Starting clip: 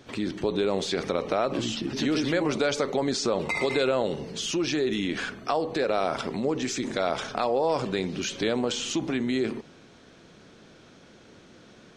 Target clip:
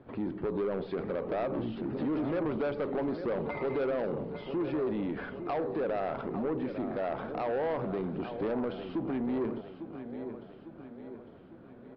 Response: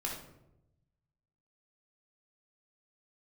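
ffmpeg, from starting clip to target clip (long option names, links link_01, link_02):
-af "lowpass=1100,aecho=1:1:852|1704|2556|3408|4260:0.251|0.126|0.0628|0.0314|0.0157,aresample=11025,asoftclip=type=tanh:threshold=-24dB,aresample=44100,volume=-2dB"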